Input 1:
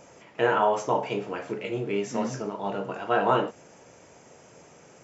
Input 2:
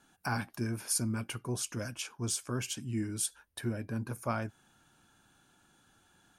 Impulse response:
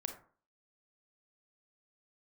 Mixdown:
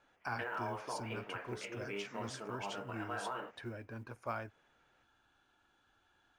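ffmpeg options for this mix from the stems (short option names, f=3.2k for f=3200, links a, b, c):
-filter_complex "[0:a]agate=range=-12dB:threshold=-48dB:ratio=16:detection=peak,equalizer=f=1.7k:w=0.63:g=12,alimiter=limit=-13.5dB:level=0:latency=1:release=210,volume=-17dB[a];[1:a]equalizer=f=170:t=o:w=1.2:g=-14,volume=-4dB[b];[a][b]amix=inputs=2:normalize=0,lowpass=3.6k,acrusher=bits=9:mode=log:mix=0:aa=0.000001"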